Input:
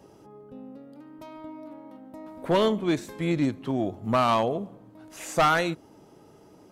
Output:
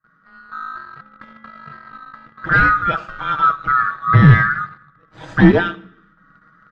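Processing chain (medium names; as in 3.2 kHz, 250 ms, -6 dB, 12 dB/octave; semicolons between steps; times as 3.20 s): split-band scrambler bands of 1 kHz; gate with hold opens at -44 dBFS; peaking EQ 120 Hz +9 dB 1.6 oct; comb 6.3 ms, depth 92%; waveshaping leveller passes 2; level rider gain up to 8 dB; tape spacing loss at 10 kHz 42 dB; on a send: reverberation RT60 0.65 s, pre-delay 82 ms, DRR 17 dB; on the sum: trim +1.5 dB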